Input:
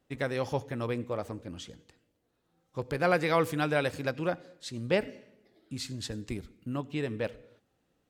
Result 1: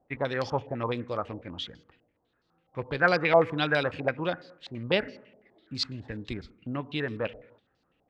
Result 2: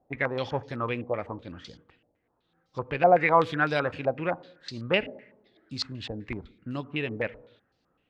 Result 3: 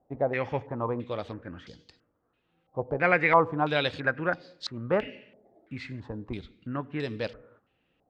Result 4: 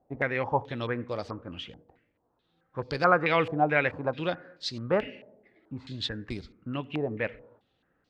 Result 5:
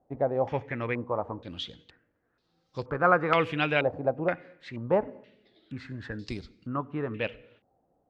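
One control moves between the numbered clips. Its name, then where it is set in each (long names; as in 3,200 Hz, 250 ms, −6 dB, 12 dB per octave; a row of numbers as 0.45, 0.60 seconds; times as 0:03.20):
low-pass on a step sequencer, speed: 12, 7.9, 3, 4.6, 2.1 Hertz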